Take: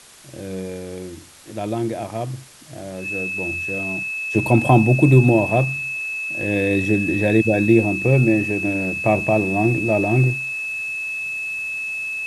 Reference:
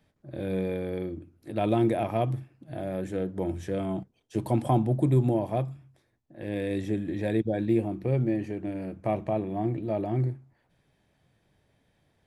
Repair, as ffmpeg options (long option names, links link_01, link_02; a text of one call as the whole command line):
ffmpeg -i in.wav -af "bandreject=frequency=2600:width=30,afwtdn=0.0063,asetnsamples=nb_out_samples=441:pad=0,asendcmd='4.05 volume volume -10dB',volume=0dB" out.wav